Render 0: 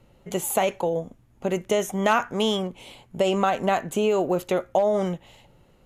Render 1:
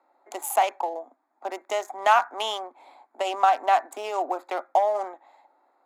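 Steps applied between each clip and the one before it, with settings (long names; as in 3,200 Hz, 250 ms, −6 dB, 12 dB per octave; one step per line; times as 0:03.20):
adaptive Wiener filter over 15 samples
Butterworth high-pass 270 Hz 72 dB per octave
low shelf with overshoot 600 Hz −7.5 dB, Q 3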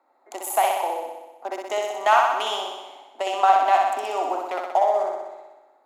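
flutter between parallel walls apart 10.7 metres, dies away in 1.1 s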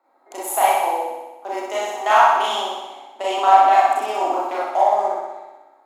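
convolution reverb RT60 0.30 s, pre-delay 27 ms, DRR −5 dB
level −2 dB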